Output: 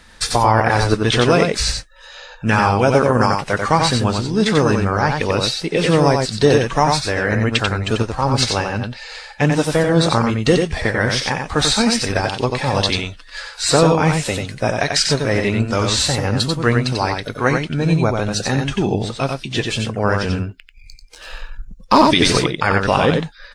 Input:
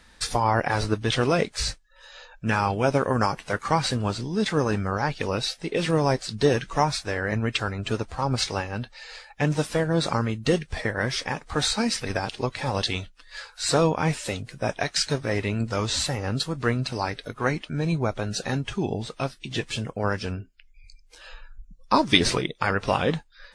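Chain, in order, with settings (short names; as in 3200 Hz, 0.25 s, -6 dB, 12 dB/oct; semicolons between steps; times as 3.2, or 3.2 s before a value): 20.29–22.03 sample leveller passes 1; on a send: echo 91 ms -4.5 dB; on the sum: maximiser +8.5 dB; gain -1 dB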